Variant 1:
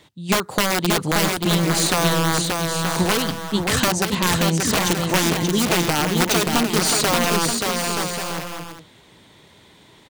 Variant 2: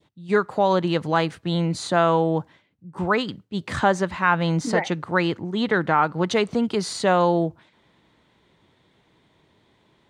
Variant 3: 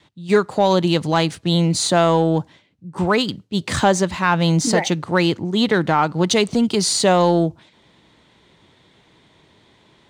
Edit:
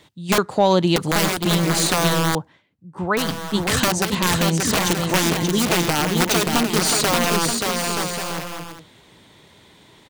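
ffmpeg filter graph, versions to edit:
-filter_complex "[0:a]asplit=3[s0][s1][s2];[s0]atrim=end=0.382[s3];[2:a]atrim=start=0.378:end=0.962[s4];[s1]atrim=start=0.958:end=2.352[s5];[1:a]atrim=start=2.348:end=3.172[s6];[s2]atrim=start=3.168[s7];[s3][s4]acrossfade=d=0.004:c1=hsin:c2=hsin[s8];[s8][s5]acrossfade=d=0.004:c1=hsin:c2=hsin[s9];[s9][s6]acrossfade=d=0.004:c1=hsin:c2=hsin[s10];[s10][s7]acrossfade=d=0.004:c1=hsin:c2=hsin"

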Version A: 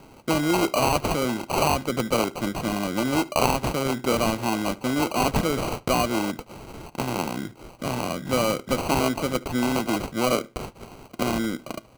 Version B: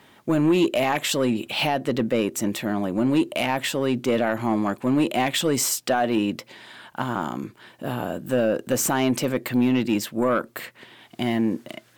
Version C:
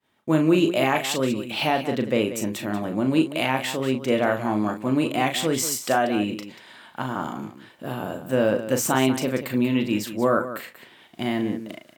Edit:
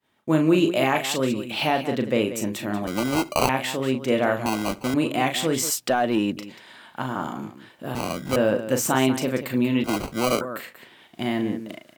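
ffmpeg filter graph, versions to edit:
-filter_complex "[0:a]asplit=4[s0][s1][s2][s3];[2:a]asplit=6[s4][s5][s6][s7][s8][s9];[s4]atrim=end=2.872[s10];[s0]atrim=start=2.868:end=3.492[s11];[s5]atrim=start=3.488:end=4.462[s12];[s1]atrim=start=4.458:end=4.942[s13];[s6]atrim=start=4.938:end=5.702[s14];[1:a]atrim=start=5.698:end=6.372[s15];[s7]atrim=start=6.368:end=7.952[s16];[s2]atrim=start=7.948:end=8.362[s17];[s8]atrim=start=8.358:end=9.842[s18];[s3]atrim=start=9.838:end=10.412[s19];[s9]atrim=start=10.408[s20];[s10][s11]acrossfade=d=0.004:c1=hsin:c2=hsin[s21];[s21][s12]acrossfade=d=0.004:c1=hsin:c2=hsin[s22];[s22][s13]acrossfade=d=0.004:c1=hsin:c2=hsin[s23];[s23][s14]acrossfade=d=0.004:c1=hsin:c2=hsin[s24];[s24][s15]acrossfade=d=0.004:c1=hsin:c2=hsin[s25];[s25][s16]acrossfade=d=0.004:c1=hsin:c2=hsin[s26];[s26][s17]acrossfade=d=0.004:c1=hsin:c2=hsin[s27];[s27][s18]acrossfade=d=0.004:c1=hsin:c2=hsin[s28];[s28][s19]acrossfade=d=0.004:c1=hsin:c2=hsin[s29];[s29][s20]acrossfade=d=0.004:c1=hsin:c2=hsin"

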